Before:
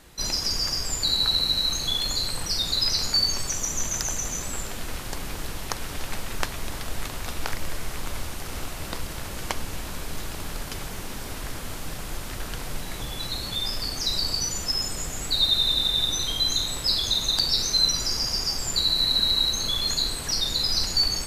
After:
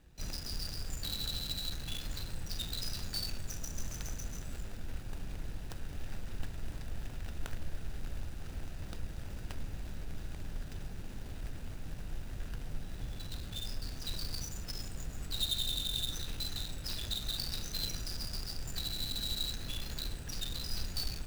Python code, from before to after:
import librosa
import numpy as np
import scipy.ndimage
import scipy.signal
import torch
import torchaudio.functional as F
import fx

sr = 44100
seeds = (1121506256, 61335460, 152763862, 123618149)

y = scipy.signal.medfilt(x, 41)
y = fx.tone_stack(y, sr, knobs='5-5-5')
y = y * 10.0 ** (9.0 / 20.0)